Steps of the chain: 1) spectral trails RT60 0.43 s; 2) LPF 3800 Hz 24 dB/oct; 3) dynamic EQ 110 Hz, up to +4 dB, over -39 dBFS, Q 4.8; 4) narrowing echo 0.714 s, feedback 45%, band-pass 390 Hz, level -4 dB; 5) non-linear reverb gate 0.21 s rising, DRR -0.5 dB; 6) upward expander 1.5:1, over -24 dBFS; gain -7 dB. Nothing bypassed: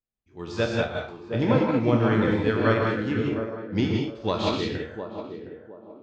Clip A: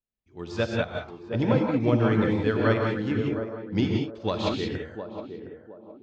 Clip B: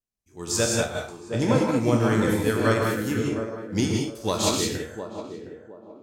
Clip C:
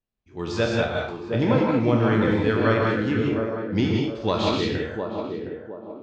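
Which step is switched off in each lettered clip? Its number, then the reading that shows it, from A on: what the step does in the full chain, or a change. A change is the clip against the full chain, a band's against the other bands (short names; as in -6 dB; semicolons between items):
1, 125 Hz band +2.0 dB; 2, 4 kHz band +4.0 dB; 6, momentary loudness spread change -3 LU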